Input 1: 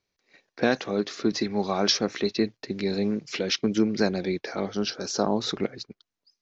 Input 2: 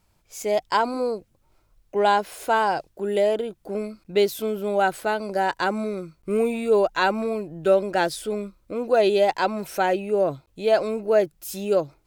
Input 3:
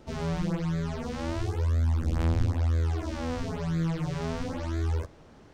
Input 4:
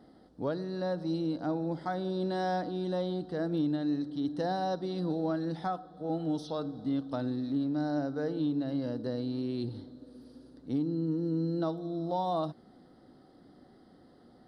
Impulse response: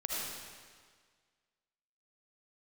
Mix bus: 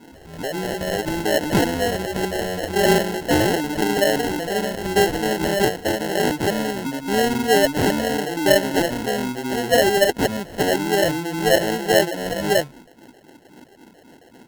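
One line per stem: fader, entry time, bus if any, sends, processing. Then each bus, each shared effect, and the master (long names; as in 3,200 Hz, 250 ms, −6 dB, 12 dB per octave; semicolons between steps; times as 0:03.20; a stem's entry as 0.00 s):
−0.5 dB, 0.00 s, no bus, no send, octave-band graphic EQ 125/250/500/1,000/2,000/4,000 Hz −7/−7/+5/+3/+5/+11 dB; volume swells 328 ms
+2.0 dB, 0.80 s, no bus, no send, no processing
−2.0 dB, 0.05 s, bus A, no send, low-shelf EQ 390 Hz −10 dB
+1.0 dB, 0.00 s, bus A, no send, parametric band 400 Hz +13.5 dB 2.9 octaves
bus A: 0.0 dB, all-pass phaser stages 4, 3.7 Hz, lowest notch 190–2,200 Hz; brickwall limiter −19.5 dBFS, peak gain reduction 10.5 dB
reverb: not used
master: decimation without filtering 37×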